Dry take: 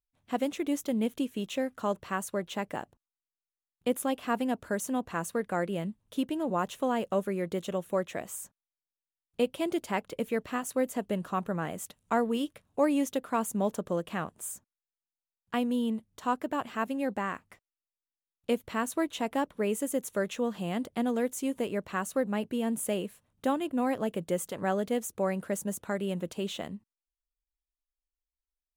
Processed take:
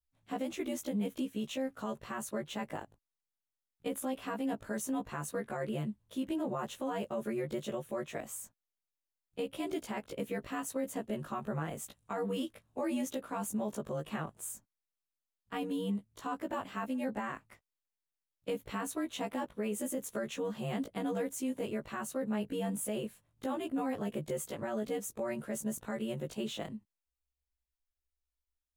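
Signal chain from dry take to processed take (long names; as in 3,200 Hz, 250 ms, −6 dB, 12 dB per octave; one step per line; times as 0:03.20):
every overlapping window played backwards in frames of 38 ms
low-shelf EQ 81 Hz +7.5 dB
brickwall limiter −27 dBFS, peak gain reduction 9 dB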